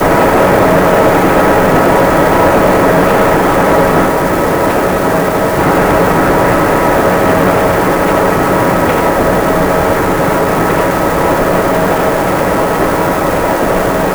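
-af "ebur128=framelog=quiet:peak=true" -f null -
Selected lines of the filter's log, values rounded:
Integrated loudness:
  I:         -10.0 LUFS
  Threshold: -20.0 LUFS
Loudness range:
  LRA:         2.8 LU
  Threshold: -30.1 LUFS
  LRA low:   -11.3 LUFS
  LRA high:   -8.5 LUFS
True peak:
  Peak:       -1.1 dBFS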